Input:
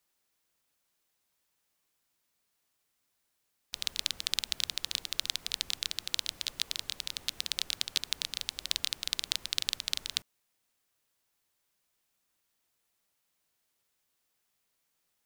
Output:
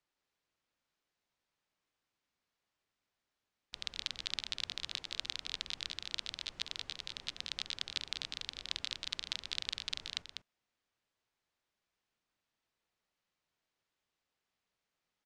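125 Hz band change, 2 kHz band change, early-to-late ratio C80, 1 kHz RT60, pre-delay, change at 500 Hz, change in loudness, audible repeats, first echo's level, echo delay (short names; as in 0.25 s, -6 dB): -2.5 dB, -4.0 dB, none, none, none, -3.0 dB, -6.5 dB, 1, -6.5 dB, 0.197 s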